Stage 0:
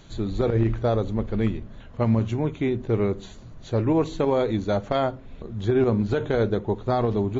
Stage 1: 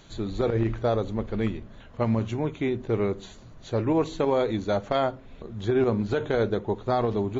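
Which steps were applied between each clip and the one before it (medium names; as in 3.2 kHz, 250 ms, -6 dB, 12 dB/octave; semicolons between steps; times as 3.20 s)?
bass shelf 270 Hz -5.5 dB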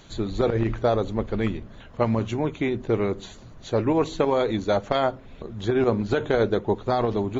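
harmonic-percussive split percussive +5 dB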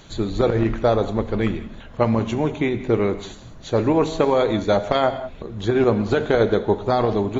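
gated-style reverb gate 220 ms flat, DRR 10.5 dB; trim +3.5 dB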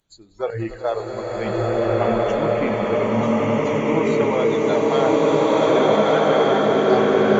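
spectral noise reduction 25 dB; echo with a slow build-up 95 ms, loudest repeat 8, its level -14 dB; swelling reverb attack 1500 ms, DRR -7.5 dB; trim -4 dB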